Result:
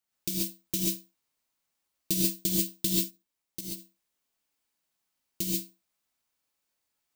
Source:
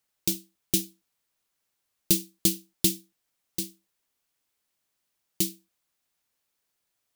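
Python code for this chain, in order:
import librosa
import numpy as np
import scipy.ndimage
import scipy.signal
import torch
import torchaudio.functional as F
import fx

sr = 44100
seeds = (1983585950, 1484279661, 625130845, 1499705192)

y = (np.kron(scipy.signal.resample_poly(x, 1, 2), np.eye(2)[0]) * 2)[:len(x)]
y = fx.level_steps(y, sr, step_db=14, at=(2.96, 3.65))
y = fx.rev_gated(y, sr, seeds[0], gate_ms=160, shape='rising', drr_db=-4.5)
y = y * 10.0 ** (-7.5 / 20.0)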